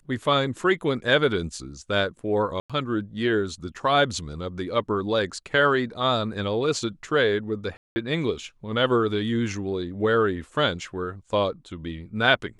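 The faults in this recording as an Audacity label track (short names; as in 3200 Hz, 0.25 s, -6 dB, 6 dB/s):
2.600000	2.700000	gap 96 ms
7.770000	7.960000	gap 0.19 s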